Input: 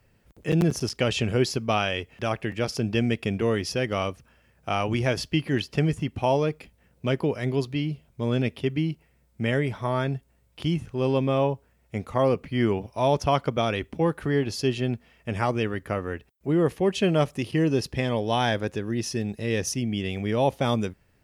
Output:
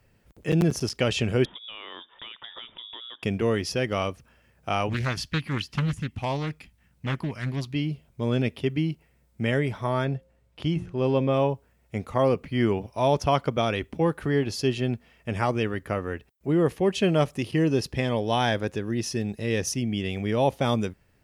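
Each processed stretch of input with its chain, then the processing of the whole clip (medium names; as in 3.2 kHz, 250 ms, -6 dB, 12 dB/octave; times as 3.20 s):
1.45–3.23 s: frequency inversion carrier 3.6 kHz + compression 12:1, threshold -32 dBFS + distance through air 220 m
4.89–7.74 s: peaking EQ 480 Hz -13 dB 1.2 oct + loudspeaker Doppler distortion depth 0.51 ms
10.05–11.34 s: low-pass 3.9 kHz 6 dB/octave + peaking EQ 580 Hz +3 dB 0.32 oct + de-hum 176.5 Hz, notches 3
whole clip: none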